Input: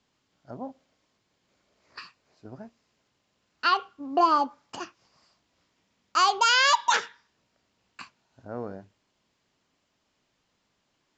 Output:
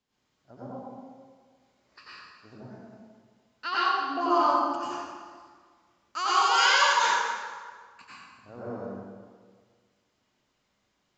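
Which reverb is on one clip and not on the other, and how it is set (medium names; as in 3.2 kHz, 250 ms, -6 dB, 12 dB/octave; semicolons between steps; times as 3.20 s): plate-style reverb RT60 1.7 s, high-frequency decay 0.7×, pre-delay 80 ms, DRR -10 dB; trim -10.5 dB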